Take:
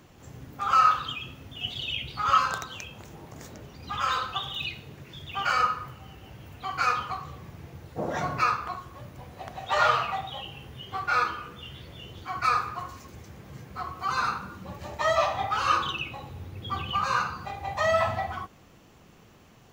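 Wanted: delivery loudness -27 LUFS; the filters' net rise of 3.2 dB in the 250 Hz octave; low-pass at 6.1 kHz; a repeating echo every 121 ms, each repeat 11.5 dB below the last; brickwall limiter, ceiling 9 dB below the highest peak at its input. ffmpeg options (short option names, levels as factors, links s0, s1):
-af "lowpass=6100,equalizer=f=250:t=o:g=4.5,alimiter=limit=0.126:level=0:latency=1,aecho=1:1:121|242|363:0.266|0.0718|0.0194,volume=1.41"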